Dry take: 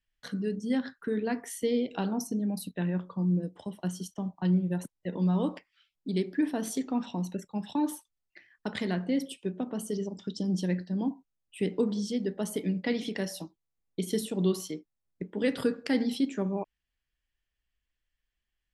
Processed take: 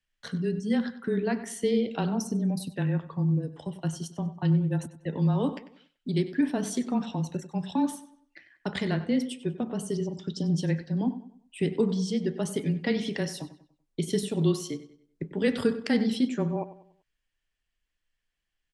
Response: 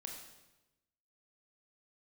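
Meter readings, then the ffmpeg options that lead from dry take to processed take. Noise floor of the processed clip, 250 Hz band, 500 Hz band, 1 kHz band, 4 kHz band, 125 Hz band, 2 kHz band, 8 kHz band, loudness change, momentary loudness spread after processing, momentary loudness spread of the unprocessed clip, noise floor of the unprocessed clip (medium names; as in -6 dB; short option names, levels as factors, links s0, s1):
-81 dBFS, +2.0 dB, +2.5 dB, +2.5 dB, +2.5 dB, +5.5 dB, +2.5 dB, +1.5 dB, +2.5 dB, 10 LU, 10 LU, -85 dBFS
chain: -filter_complex "[0:a]afreqshift=-19,lowpass=f=10000:w=0.5412,lowpass=f=10000:w=1.3066,asplit=2[s0][s1];[s1]adelay=96,lowpass=f=4600:p=1,volume=0.2,asplit=2[s2][s3];[s3]adelay=96,lowpass=f=4600:p=1,volume=0.39,asplit=2[s4][s5];[s5]adelay=96,lowpass=f=4600:p=1,volume=0.39,asplit=2[s6][s7];[s7]adelay=96,lowpass=f=4600:p=1,volume=0.39[s8];[s0][s2][s4][s6][s8]amix=inputs=5:normalize=0,volume=1.33"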